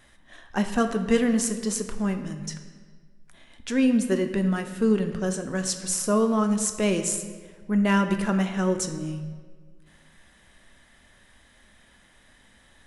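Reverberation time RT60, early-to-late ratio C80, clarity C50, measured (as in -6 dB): 1.6 s, 10.5 dB, 9.5 dB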